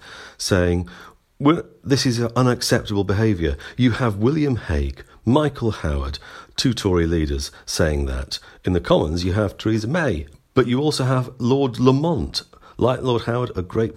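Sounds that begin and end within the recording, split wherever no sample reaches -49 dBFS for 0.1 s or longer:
1.40–10.40 s

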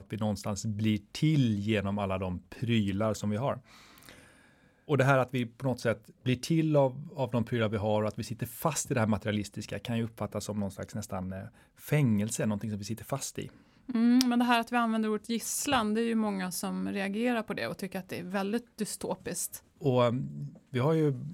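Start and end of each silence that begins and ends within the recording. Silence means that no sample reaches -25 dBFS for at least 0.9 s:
3.53–4.91 s

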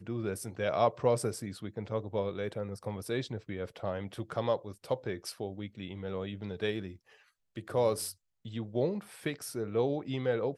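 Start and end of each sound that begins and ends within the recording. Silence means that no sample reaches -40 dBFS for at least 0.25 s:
7.57–8.12 s

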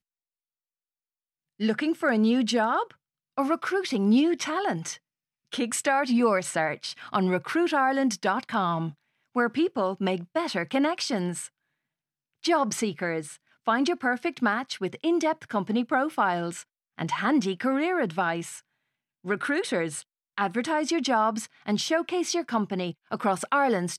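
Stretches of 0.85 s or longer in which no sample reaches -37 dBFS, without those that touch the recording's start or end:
11.46–12.44 s

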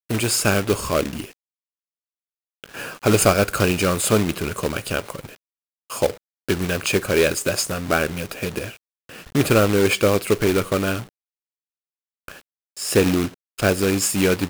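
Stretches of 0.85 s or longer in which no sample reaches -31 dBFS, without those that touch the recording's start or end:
1.26–2.64 s
11.04–12.28 s

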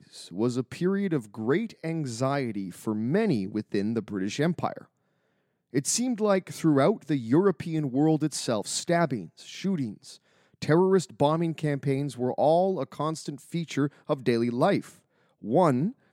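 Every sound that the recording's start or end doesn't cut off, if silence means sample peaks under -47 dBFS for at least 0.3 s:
5.73–10.16 s
10.62–14.95 s

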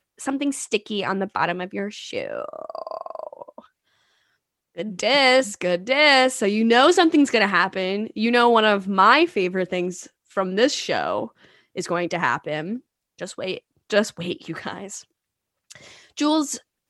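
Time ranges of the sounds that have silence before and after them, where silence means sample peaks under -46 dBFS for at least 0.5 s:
4.76–15.04 s

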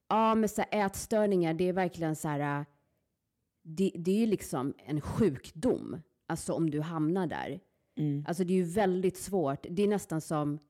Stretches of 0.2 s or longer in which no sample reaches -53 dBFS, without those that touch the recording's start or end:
2.65–3.65 s
6.02–6.29 s
7.59–7.97 s

